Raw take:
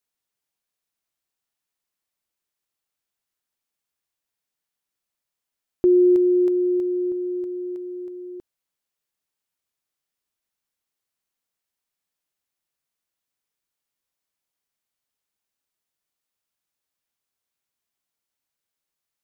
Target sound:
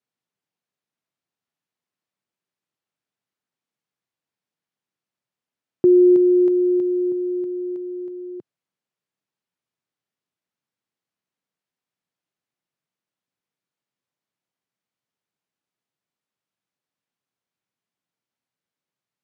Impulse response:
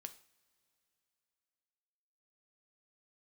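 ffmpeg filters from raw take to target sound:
-af "highpass=f=130:w=0.5412,highpass=f=130:w=1.3066,aemphasis=mode=reproduction:type=bsi"

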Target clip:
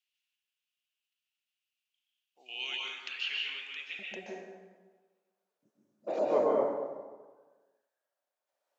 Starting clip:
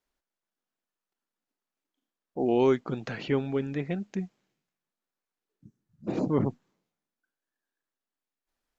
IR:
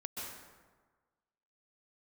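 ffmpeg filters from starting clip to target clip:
-filter_complex "[0:a]asetnsamples=n=441:p=0,asendcmd='3.99 highpass f 590',highpass=f=2.8k:t=q:w=5.3[a];[1:a]atrim=start_sample=2205[b];[a][b]afir=irnorm=-1:irlink=0"

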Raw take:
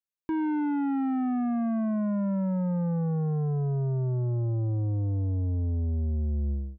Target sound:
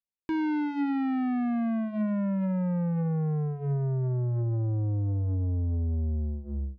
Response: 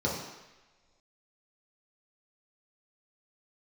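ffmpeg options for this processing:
-af "aexciter=amount=6.8:drive=8.7:freq=2.1k,bandreject=f=72.58:t=h:w=4,bandreject=f=145.16:t=h:w=4,bandreject=f=217.74:t=h:w=4,bandreject=f=290.32:t=h:w=4,bandreject=f=362.9:t=h:w=4,bandreject=f=435.48:t=h:w=4,bandreject=f=508.06:t=h:w=4,bandreject=f=580.64:t=h:w=4,bandreject=f=653.22:t=h:w=4,adynamicsmooth=sensitivity=1.5:basefreq=600"

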